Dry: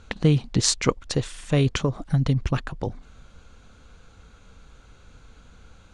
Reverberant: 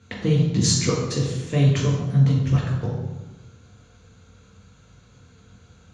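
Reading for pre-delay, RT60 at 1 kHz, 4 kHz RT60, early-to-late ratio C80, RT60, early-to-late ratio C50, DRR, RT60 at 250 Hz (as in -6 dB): 3 ms, 1.0 s, 0.80 s, 4.5 dB, 1.1 s, 2.5 dB, -4.0 dB, 1.4 s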